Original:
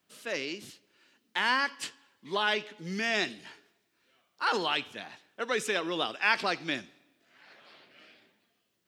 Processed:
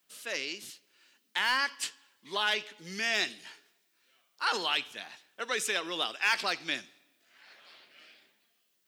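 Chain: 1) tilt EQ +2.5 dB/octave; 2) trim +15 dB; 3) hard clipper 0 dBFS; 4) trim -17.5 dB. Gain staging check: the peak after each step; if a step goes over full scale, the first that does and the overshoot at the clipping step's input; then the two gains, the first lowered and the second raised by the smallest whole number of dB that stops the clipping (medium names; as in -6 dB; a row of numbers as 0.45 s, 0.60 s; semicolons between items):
-9.5 dBFS, +5.5 dBFS, 0.0 dBFS, -17.5 dBFS; step 2, 5.5 dB; step 2 +9 dB, step 4 -11.5 dB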